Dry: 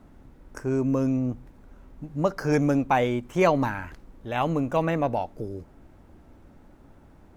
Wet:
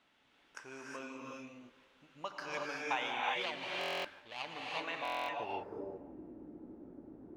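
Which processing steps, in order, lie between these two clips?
3.26–4.84 s: median filter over 41 samples; in parallel at +2.5 dB: compression, threshold -33 dBFS, peak gain reduction 15 dB; on the sum: band-pass sweep 3.1 kHz -> 320 Hz, 5.14–5.80 s; dynamic bell 940 Hz, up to +7 dB, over -58 dBFS, Q 1.7; on a send: feedback echo behind a band-pass 172 ms, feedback 62%, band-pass 640 Hz, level -18.5 dB; on the sum: gated-style reverb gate 400 ms rising, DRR -2.5 dB; buffer glitch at 3.79/5.03 s, samples 1024, times 10; trim -3.5 dB

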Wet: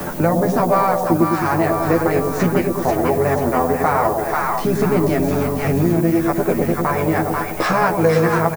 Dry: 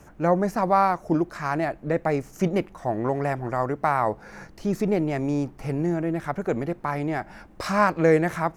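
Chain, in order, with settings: peaking EQ 65 Hz -10 dB 0.95 oct; in parallel at +3 dB: compression 6:1, threshold -34 dBFS, peak gain reduction 18.5 dB; on the sum: harmony voices -7 st -7 dB; on a send: two-band feedback delay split 820 Hz, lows 106 ms, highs 489 ms, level -4 dB; on the sum: added noise violet -38 dBFS; doubling 12 ms -2 dB; three bands compressed up and down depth 70%

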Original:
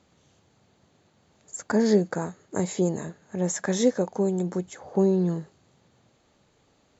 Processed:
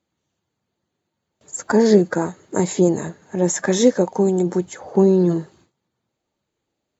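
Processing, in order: coarse spectral quantiser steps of 15 dB; bass shelf 140 Hz -3 dB; small resonant body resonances 340/920 Hz, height 6 dB, ringing for 90 ms; gate with hold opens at -51 dBFS; trim +7.5 dB

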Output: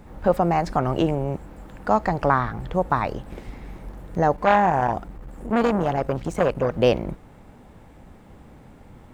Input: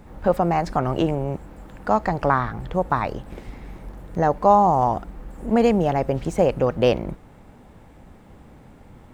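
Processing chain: 4.36–6.75 s: transformer saturation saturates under 1 kHz

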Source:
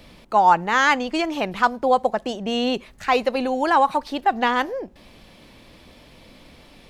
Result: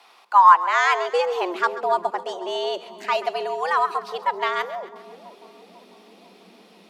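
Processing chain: Chebyshev shaper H 2 -31 dB, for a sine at -4 dBFS; frequency shift +170 Hz; high-pass sweep 970 Hz -> 92 Hz, 0.52–2.62 s; on a send: two-band feedback delay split 860 Hz, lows 496 ms, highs 134 ms, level -15 dB; on the sum: trim -4 dB

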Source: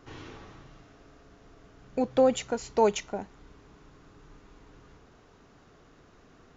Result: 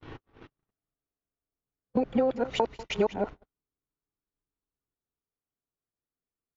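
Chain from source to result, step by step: time reversed locally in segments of 236 ms; compression 12:1, threshold -28 dBFS, peak gain reduction 12.5 dB; distance through air 230 m; delay 193 ms -15 dB; gate -43 dBFS, range -48 dB; trim +7 dB

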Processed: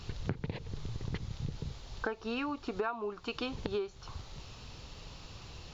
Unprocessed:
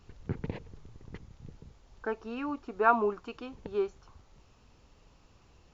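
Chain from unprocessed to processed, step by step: ten-band graphic EQ 125 Hz +5 dB, 250 Hz -3 dB, 4 kHz +10 dB; compression 20:1, threshold -42 dBFS, peak gain reduction 26 dB; trim +10.5 dB

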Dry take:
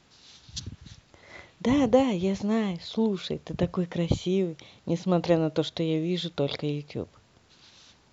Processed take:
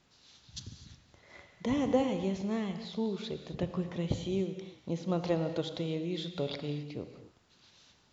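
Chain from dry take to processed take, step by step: gated-style reverb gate 290 ms flat, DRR 7.5 dB; trim -7.5 dB

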